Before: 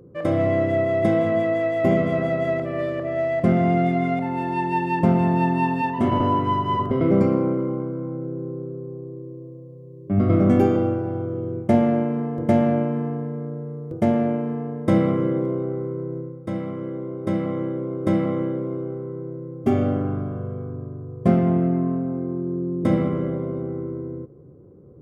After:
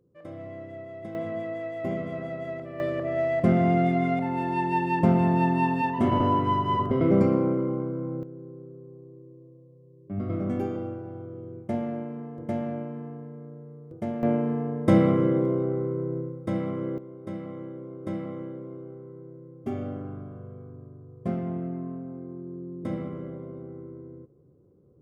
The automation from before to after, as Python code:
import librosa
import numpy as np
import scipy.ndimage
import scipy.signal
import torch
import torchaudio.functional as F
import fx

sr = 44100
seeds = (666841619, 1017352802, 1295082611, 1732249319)

y = fx.gain(x, sr, db=fx.steps((0.0, -19.5), (1.15, -11.5), (2.8, -2.5), (8.23, -12.0), (14.23, -0.5), (16.98, -12.0)))